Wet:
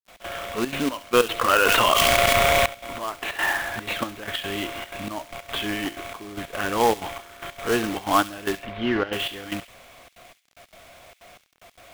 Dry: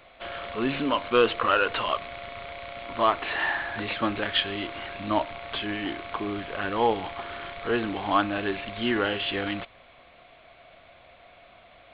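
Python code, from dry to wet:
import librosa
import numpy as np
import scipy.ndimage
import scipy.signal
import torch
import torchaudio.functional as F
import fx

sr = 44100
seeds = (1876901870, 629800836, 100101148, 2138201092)

y = fx.step_gate(x, sr, bpm=186, pattern='.x.xxxxx.xx..', floor_db=-12.0, edge_ms=4.5)
y = fx.quant_companded(y, sr, bits=4)
y = fx.air_absorb(y, sr, metres=300.0, at=(8.56, 9.13))
y = fx.echo_wet_highpass(y, sr, ms=69, feedback_pct=40, hz=2600.0, wet_db=-11)
y = fx.env_flatten(y, sr, amount_pct=100, at=(1.55, 2.66))
y = F.gain(torch.from_numpy(y), 3.0).numpy()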